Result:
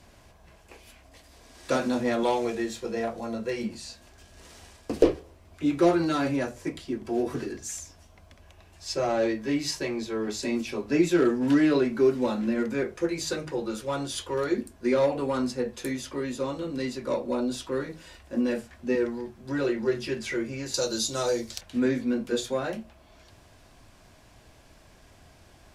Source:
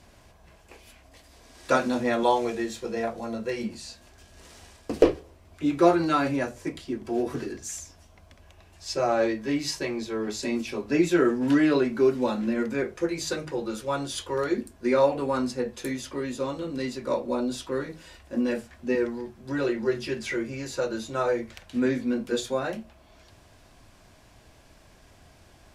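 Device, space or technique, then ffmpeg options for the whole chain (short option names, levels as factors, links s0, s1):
one-band saturation: -filter_complex "[0:a]asettb=1/sr,asplit=3[s0][s1][s2];[s0]atrim=end=20.744[s3];[s1]atrim=start=20.74:end=21.61,asetpts=PTS-STARTPTS,afade=t=in:d=0.004:c=qsin,afade=t=out:st=0.866:d=0.004:c=qsin,highshelf=f=3200:t=q:w=1.5:g=13[s4];[s2]atrim=start=21.606[s5];[s3][s4]acrossfade=d=0.004:c1=hsin:c2=qsin[s6];[s6][s5]acrossfade=d=0.004:c1=qsin:c2=hsin,acrossover=split=580|3600[s7][s8][s9];[s8]asoftclip=type=tanh:threshold=0.0376[s10];[s7][s10][s9]amix=inputs=3:normalize=0"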